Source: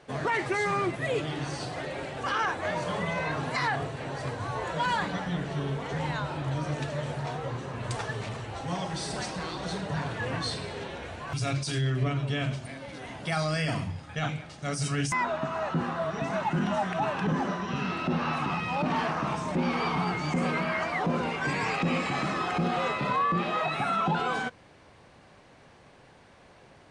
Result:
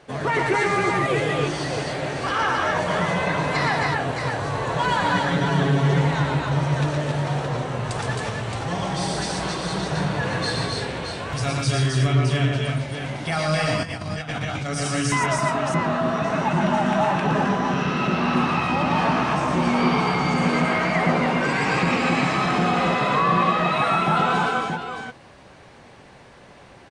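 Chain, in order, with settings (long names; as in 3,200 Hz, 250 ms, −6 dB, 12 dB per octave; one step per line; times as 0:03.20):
0:05.04–0:06.00: comb filter 7.2 ms, depth 93%
multi-tap delay 116/137/265/281/620 ms −4/−9.5/−4/−5.5/−6.5 dB
0:13.83–0:14.70: compressor whose output falls as the input rises −32 dBFS, ratio −0.5
level +4 dB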